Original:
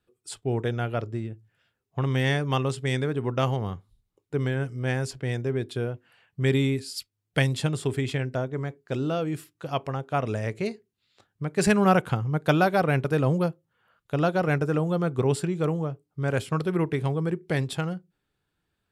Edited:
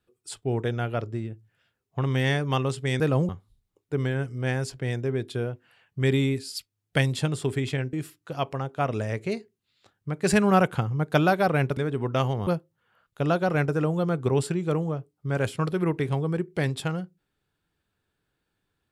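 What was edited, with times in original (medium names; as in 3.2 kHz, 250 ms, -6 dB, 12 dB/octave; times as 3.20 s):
3.00–3.70 s: swap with 13.11–13.40 s
8.34–9.27 s: delete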